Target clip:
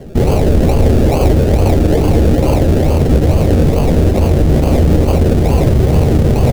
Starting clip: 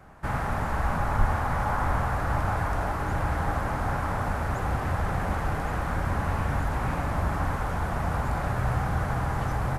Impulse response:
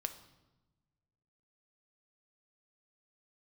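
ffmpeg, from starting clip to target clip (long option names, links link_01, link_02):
-filter_complex "[0:a]tremolo=f=280:d=0.4,atempo=1.5,acrusher=samples=34:mix=1:aa=0.000001:lfo=1:lforange=20.4:lforate=2.3,lowshelf=frequency=710:width_type=q:width=1.5:gain=9.5,asplit=2[link_01][link_02];[link_02]adelay=13,volume=-10.5dB[link_03];[link_01][link_03]amix=inputs=2:normalize=0,alimiter=level_in=13dB:limit=-1dB:release=50:level=0:latency=1,volume=-1dB"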